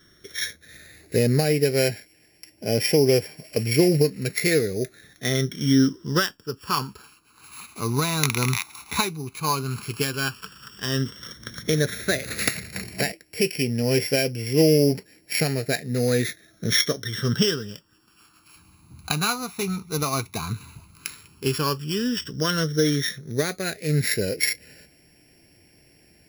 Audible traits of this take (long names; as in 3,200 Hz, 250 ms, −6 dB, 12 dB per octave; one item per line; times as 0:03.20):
a buzz of ramps at a fixed pitch in blocks of 8 samples
phaser sweep stages 12, 0.088 Hz, lowest notch 550–1,200 Hz